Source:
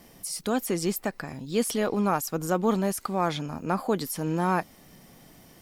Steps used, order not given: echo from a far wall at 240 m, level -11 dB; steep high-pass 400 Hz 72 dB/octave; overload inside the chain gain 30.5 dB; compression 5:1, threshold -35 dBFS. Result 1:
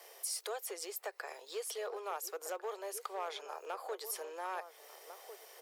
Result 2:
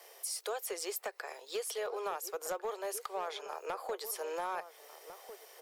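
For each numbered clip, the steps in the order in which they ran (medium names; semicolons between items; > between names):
compression > echo from a far wall > overload inside the chain > steep high-pass; steep high-pass > compression > overload inside the chain > echo from a far wall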